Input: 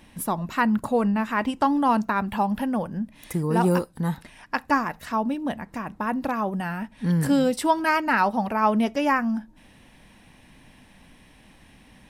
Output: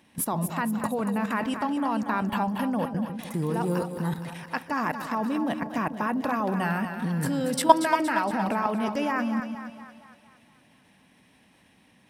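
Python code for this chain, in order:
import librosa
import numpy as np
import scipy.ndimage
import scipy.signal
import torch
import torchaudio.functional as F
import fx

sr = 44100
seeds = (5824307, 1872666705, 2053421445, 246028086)

p1 = scipy.signal.sosfilt(scipy.signal.butter(2, 120.0, 'highpass', fs=sr, output='sos'), x)
p2 = fx.level_steps(p1, sr, step_db=17)
p3 = p2 + fx.echo_split(p2, sr, split_hz=570.0, low_ms=150, high_ms=233, feedback_pct=52, wet_db=-8.0, dry=0)
y = F.gain(torch.from_numpy(p3), 7.0).numpy()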